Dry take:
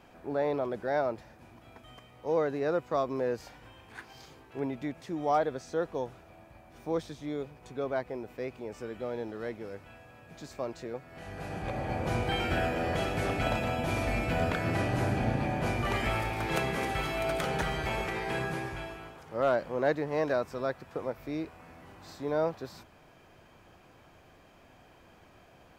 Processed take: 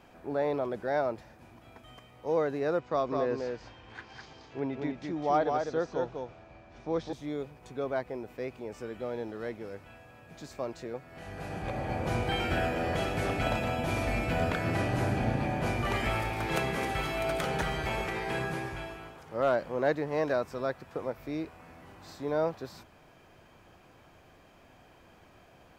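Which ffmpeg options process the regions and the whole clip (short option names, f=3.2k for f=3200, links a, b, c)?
-filter_complex "[0:a]asettb=1/sr,asplit=3[a][b][c];[a]atrim=end=2.794[d];[b]atrim=start=2.79:end=7.13,asetpts=PTS-STARTPTS,afade=t=in:d=0.004:c=qsin,afade=t=out:st=4.336:d=0.004:c=qsin,lowpass=f=6.1k:w=0.5412,lowpass=f=6.1k:w=1.3066,aecho=1:1:204:0.596,atrim=end_sample=191394[e];[c]atrim=start=7.126[f];[d][e]acrossfade=d=0.004:c1=hsin:c2=qsin[g];[g][f]acrossfade=d=0.004:c1=qsin:c2=hsin"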